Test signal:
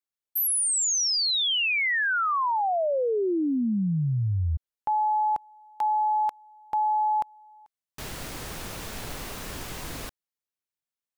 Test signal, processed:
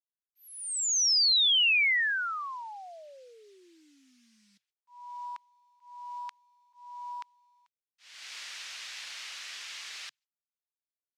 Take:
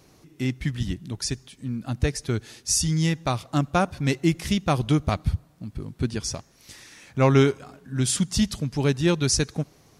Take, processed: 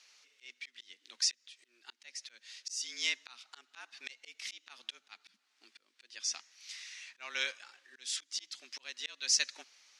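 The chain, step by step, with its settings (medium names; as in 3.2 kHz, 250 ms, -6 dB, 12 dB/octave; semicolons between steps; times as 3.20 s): frequency shift +120 Hz; slow attack 386 ms; companded quantiser 8-bit; Butterworth band-pass 3.5 kHz, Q 0.8; trim +1.5 dB; Opus 128 kbps 48 kHz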